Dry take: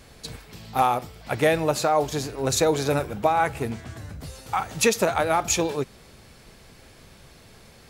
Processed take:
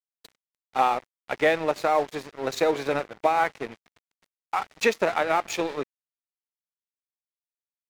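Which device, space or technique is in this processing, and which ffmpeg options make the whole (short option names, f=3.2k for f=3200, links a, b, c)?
pocket radio on a weak battery: -af "highpass=270,lowpass=4k,aeval=exprs='sgn(val(0))*max(abs(val(0))-0.0158,0)':c=same,equalizer=f=2k:t=o:w=0.31:g=4"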